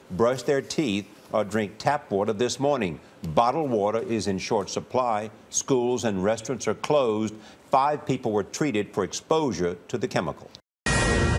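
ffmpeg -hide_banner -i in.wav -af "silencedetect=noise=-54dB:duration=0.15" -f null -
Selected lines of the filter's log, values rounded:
silence_start: 10.60
silence_end: 10.86 | silence_duration: 0.26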